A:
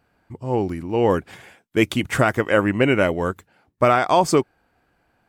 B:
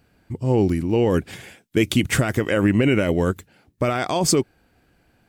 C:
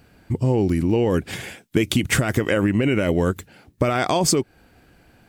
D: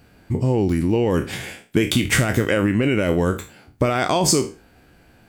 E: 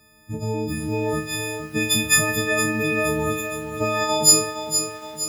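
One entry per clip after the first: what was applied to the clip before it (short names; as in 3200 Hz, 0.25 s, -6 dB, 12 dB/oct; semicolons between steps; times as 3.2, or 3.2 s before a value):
limiter -14 dBFS, peak gain reduction 9 dB; bell 1000 Hz -10 dB 1.9 oct; gain +8 dB
compressor, threshold -23 dBFS, peak gain reduction 10 dB; gain +7 dB
spectral trails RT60 0.33 s
frequency quantiser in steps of 6 st; lo-fi delay 0.466 s, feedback 55%, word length 6-bit, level -8.5 dB; gain -7.5 dB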